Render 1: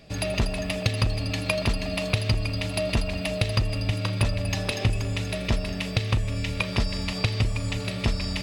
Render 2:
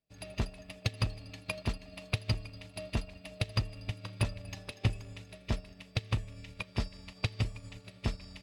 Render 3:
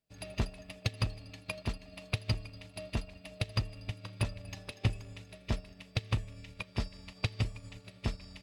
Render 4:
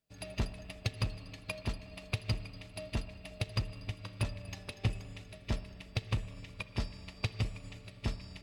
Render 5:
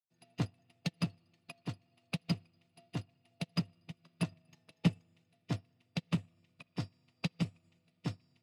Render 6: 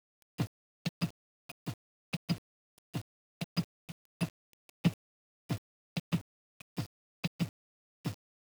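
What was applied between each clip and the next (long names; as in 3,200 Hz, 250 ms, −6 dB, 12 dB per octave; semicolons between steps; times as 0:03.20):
expander for the loud parts 2.5 to 1, over −41 dBFS; level −4 dB
speech leveller 2 s; level −2.5 dB
in parallel at −4.5 dB: hard clipping −29.5 dBFS, distortion −8 dB; on the sum: spring reverb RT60 3 s, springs 51/60 ms, chirp 45 ms, DRR 14 dB; level −4 dB
frequency shifter +61 Hz; expander for the loud parts 2.5 to 1, over −44 dBFS; level +4 dB
bit-depth reduction 8 bits, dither none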